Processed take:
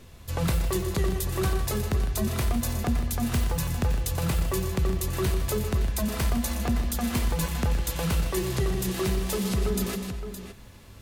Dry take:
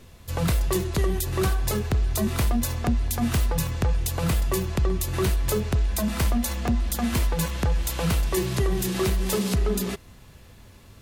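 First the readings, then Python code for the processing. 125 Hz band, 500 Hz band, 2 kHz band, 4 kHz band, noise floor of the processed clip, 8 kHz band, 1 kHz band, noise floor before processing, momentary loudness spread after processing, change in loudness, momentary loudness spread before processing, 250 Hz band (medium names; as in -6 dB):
-2.0 dB, -2.5 dB, -2.0 dB, -2.0 dB, -47 dBFS, -2.0 dB, -2.0 dB, -49 dBFS, 1 LU, -2.5 dB, 2 LU, -2.0 dB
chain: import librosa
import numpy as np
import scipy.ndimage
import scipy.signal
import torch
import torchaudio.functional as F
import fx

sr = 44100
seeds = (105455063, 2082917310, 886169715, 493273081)

y = fx.echo_multitap(x, sr, ms=(119, 156, 251, 566), db=(-11.0, -11.5, -16.5, -12.5))
y = fx.rider(y, sr, range_db=3, speed_s=0.5)
y = F.gain(torch.from_numpy(y), -3.0).numpy()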